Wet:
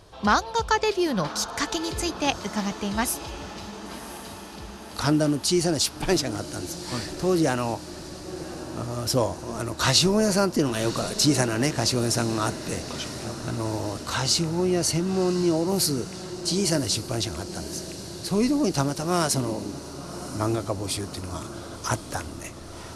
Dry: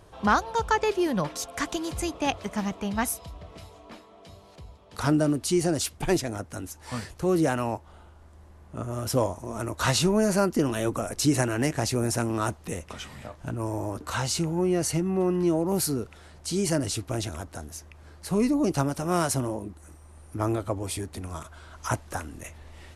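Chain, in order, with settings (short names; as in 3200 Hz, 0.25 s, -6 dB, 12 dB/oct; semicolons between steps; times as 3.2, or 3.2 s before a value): bell 4600 Hz +8.5 dB 0.94 oct; on a send: diffused feedback echo 1.077 s, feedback 67%, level -13.5 dB; on the sum: gain +1 dB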